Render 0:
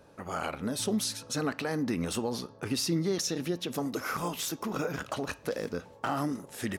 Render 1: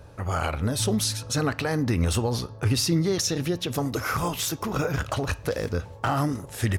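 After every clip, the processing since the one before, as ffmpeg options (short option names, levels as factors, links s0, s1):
-af "lowshelf=f=140:t=q:w=1.5:g=12,volume=2"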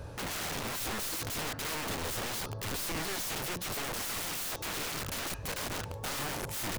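-af "aeval=exprs='clip(val(0),-1,0.0501)':c=same,alimiter=limit=0.075:level=0:latency=1:release=215,aeval=exprs='(mod(56.2*val(0)+1,2)-1)/56.2':c=same,volume=1.5"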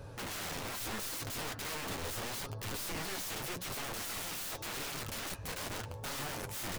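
-af "flanger=delay=7:depth=4.6:regen=-36:speed=0.82:shape=triangular"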